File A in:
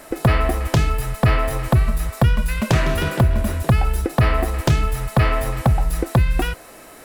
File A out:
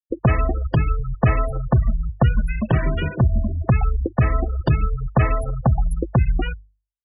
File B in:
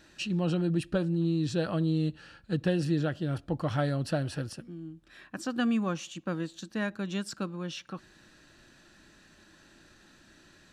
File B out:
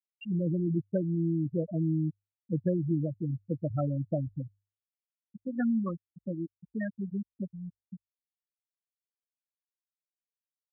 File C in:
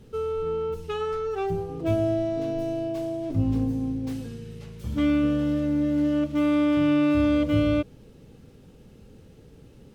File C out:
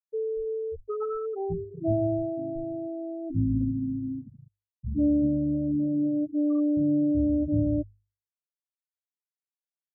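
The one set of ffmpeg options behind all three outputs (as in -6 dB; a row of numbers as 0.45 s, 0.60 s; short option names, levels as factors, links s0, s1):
-af "afftfilt=real='re*gte(hypot(re,im),0.141)':imag='im*gte(hypot(re,im),0.141)':win_size=1024:overlap=0.75,bandreject=f=50:t=h:w=6,bandreject=f=100:t=h:w=6,adynamicequalizer=threshold=0.0126:dfrequency=730:dqfactor=0.72:tfrequency=730:tqfactor=0.72:attack=5:release=100:ratio=0.375:range=4:mode=cutabove:tftype=bell"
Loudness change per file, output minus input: -1.5 LU, -1.0 LU, -2.5 LU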